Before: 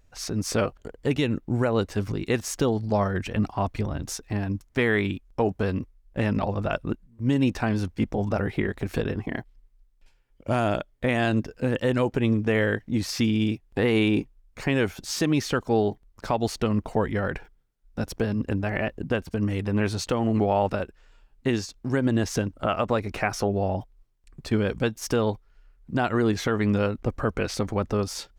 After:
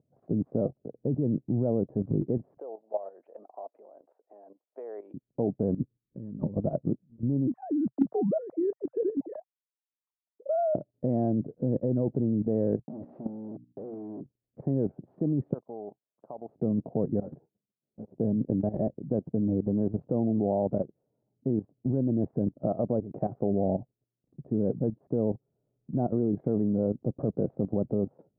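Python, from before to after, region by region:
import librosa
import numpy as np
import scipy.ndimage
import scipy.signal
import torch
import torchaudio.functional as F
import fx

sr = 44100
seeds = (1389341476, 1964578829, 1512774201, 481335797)

y = fx.chain(x, sr, fx.highpass(hz=540.0, slope=24),
    fx.tilt_eq(slope=2.5), at=(2.57, 5.14))
y = fx.chain(y, sr, fx.fixed_phaser(hz=1700.0, stages=4),
    fx.over_compress(threshold_db=-31.0, ratio=-0.5), at=(5.74, 6.54))
y = fx.chain(y, sr, fx.sine_speech(),
    fx.peak_eq(hz=1200.0, db=4.0, octaves=0.58), at=(7.47, 10.75))
y = fx.chain(y, sr, fx.quant_companded(bits=2),
    fx.low_shelf(hz=250.0, db=-11.5),
    fx.hum_notches(base_hz=60, count=5), at=(12.81, 14.21))
y = fx.chain(y, sr, fx.law_mismatch(coded='A'),
    fx.bandpass_q(hz=1100.0, q=1.9), at=(15.53, 16.49))
y = fx.chain(y, sr, fx.block_float(bits=3),
    fx.level_steps(step_db=13),
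    fx.ensemble(), at=(17.2, 18.15))
y = scipy.signal.sosfilt(scipy.signal.ellip(3, 1.0, 80, [130.0, 660.0], 'bandpass', fs=sr, output='sos'), y)
y = fx.low_shelf(y, sr, hz=310.0, db=9.0)
y = fx.level_steps(y, sr, step_db=13)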